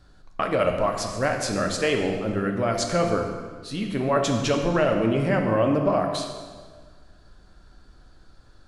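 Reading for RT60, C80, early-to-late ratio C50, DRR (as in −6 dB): 1.6 s, 6.5 dB, 5.0 dB, 2.5 dB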